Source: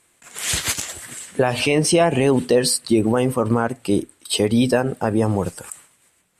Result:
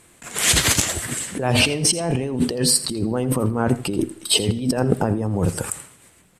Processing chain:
low-shelf EQ 440 Hz +8.5 dB
compressor whose output falls as the input rises −21 dBFS, ratio −1
single-tap delay 83 ms −16 dB
convolution reverb RT60 0.75 s, pre-delay 45 ms, DRR 20.5 dB

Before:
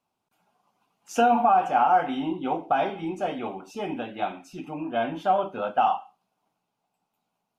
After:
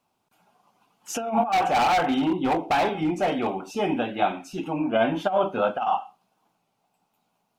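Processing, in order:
0:01.52–0:03.67: gain into a clipping stage and back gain 25 dB
compressor whose output falls as the input rises −24 dBFS, ratio −0.5
wow of a warped record 33 1/3 rpm, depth 100 cents
level +4.5 dB

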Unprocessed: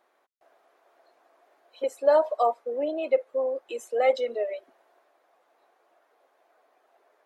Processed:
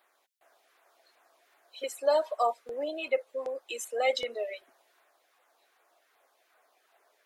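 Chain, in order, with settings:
tilt shelving filter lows −8.5 dB, about 1,200 Hz
auto-filter notch saw down 2.6 Hz 480–6,900 Hz

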